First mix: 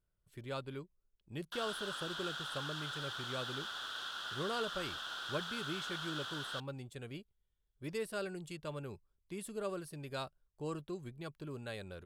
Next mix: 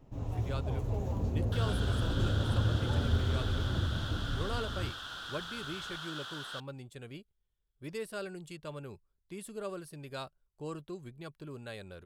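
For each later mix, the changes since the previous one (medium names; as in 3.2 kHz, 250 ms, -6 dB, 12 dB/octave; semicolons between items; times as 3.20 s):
first sound: unmuted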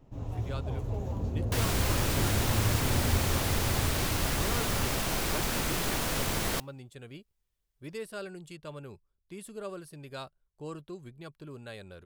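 second sound: remove two resonant band-passes 2.2 kHz, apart 1.2 oct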